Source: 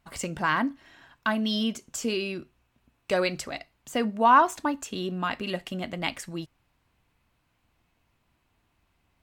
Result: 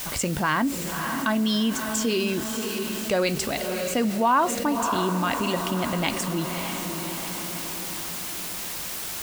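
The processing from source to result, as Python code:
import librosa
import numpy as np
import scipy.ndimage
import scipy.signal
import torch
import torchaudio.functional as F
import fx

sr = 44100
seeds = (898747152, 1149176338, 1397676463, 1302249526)

y = fx.peak_eq(x, sr, hz=1600.0, db=-4.0, octaves=2.9)
y = fx.quant_dither(y, sr, seeds[0], bits=8, dither='triangular')
y = fx.echo_diffused(y, sr, ms=596, feedback_pct=50, wet_db=-10.5)
y = fx.env_flatten(y, sr, amount_pct=50)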